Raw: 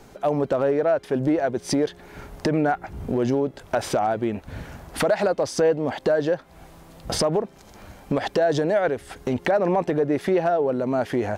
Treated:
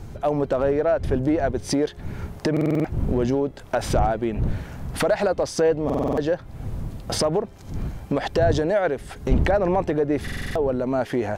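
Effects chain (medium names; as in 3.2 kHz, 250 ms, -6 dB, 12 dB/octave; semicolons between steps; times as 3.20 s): wind noise 110 Hz -30 dBFS; buffer glitch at 2.52/5.85/10.23 s, samples 2048, times 6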